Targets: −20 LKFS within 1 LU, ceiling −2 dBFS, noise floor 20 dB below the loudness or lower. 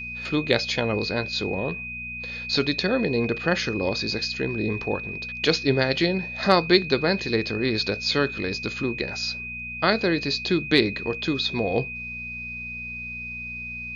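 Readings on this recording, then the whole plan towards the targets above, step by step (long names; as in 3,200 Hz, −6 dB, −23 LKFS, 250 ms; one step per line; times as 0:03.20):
mains hum 60 Hz; hum harmonics up to 240 Hz; level of the hum −41 dBFS; interfering tone 2,500 Hz; level of the tone −32 dBFS; integrated loudness −24.5 LKFS; sample peak −4.5 dBFS; target loudness −20.0 LKFS
→ hum removal 60 Hz, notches 4
notch filter 2,500 Hz, Q 30
level +4.5 dB
brickwall limiter −2 dBFS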